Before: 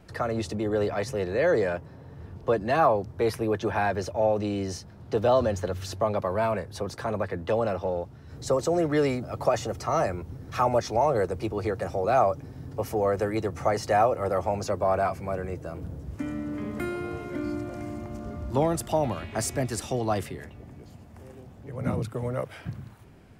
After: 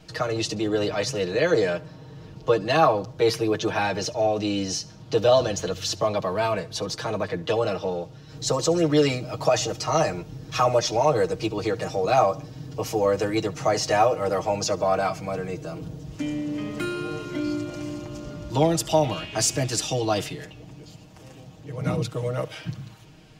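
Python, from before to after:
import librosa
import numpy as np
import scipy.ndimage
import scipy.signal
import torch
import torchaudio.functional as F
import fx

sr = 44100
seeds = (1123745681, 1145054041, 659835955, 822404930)

y = fx.band_shelf(x, sr, hz=4300.0, db=9.5, octaves=1.7)
y = y + 0.86 * np.pad(y, (int(6.4 * sr / 1000.0), 0))[:len(y)]
y = fx.echo_feedback(y, sr, ms=70, feedback_pct=44, wet_db=-21.5)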